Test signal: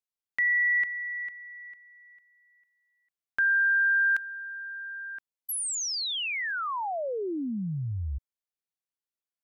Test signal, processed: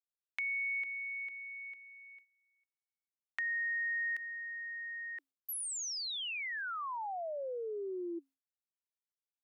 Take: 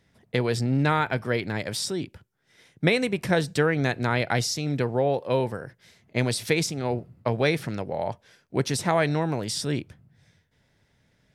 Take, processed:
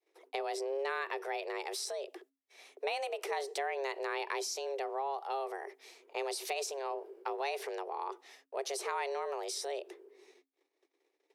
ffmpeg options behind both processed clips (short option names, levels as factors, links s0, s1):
-af "agate=range=0.0224:threshold=0.00112:ratio=3:release=97:detection=rms,afreqshift=270,acompressor=threshold=0.00562:ratio=2:attack=7.4:release=71:detection=peak"